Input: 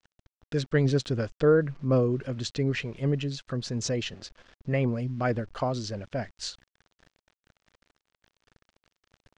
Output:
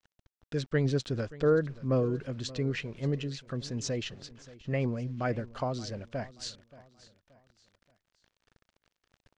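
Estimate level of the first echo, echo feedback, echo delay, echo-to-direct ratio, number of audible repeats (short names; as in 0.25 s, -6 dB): -19.0 dB, 38%, 0.578 s, -18.5 dB, 2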